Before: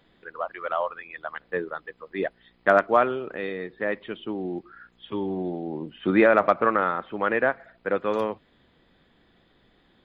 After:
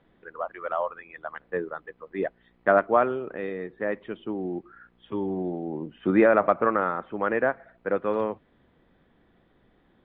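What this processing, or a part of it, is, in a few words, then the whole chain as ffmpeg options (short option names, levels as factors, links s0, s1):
phone in a pocket: -af "lowpass=3100,highshelf=f=2200:g=-9"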